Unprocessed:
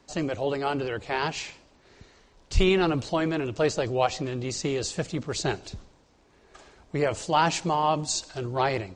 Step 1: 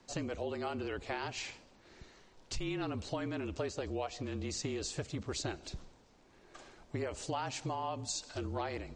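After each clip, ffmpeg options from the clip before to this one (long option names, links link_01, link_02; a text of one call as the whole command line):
ffmpeg -i in.wav -af "acompressor=threshold=-32dB:ratio=5,afreqshift=-35,volume=-3dB" out.wav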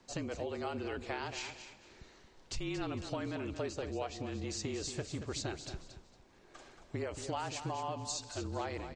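ffmpeg -i in.wav -af "aecho=1:1:228|456|684:0.316|0.0822|0.0214,volume=-1dB" out.wav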